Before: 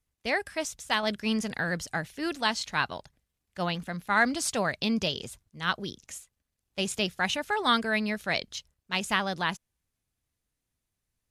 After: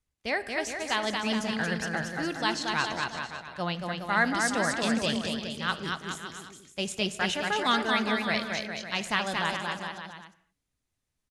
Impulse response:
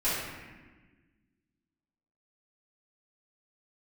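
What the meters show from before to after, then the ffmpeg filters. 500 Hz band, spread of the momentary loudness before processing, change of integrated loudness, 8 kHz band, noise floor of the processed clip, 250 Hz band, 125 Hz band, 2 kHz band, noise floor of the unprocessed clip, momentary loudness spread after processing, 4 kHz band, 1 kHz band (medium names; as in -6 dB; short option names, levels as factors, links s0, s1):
+0.5 dB, 15 LU, 0.0 dB, -0.5 dB, -83 dBFS, +0.5 dB, +0.5 dB, +1.0 dB, -84 dBFS, 11 LU, +0.5 dB, +1.0 dB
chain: -filter_complex "[0:a]lowpass=10000,aecho=1:1:230|414|561.2|679|773.2:0.631|0.398|0.251|0.158|0.1,asplit=2[s0][s1];[1:a]atrim=start_sample=2205,afade=t=out:st=0.29:d=0.01,atrim=end_sample=13230[s2];[s1][s2]afir=irnorm=-1:irlink=0,volume=0.0708[s3];[s0][s3]amix=inputs=2:normalize=0,volume=0.794"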